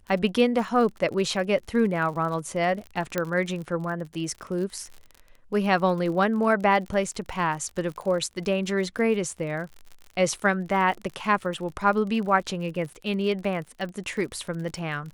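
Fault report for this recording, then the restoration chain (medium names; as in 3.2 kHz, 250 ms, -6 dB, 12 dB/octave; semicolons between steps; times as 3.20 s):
crackle 55 per s -34 dBFS
3.18 s: pop -11 dBFS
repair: de-click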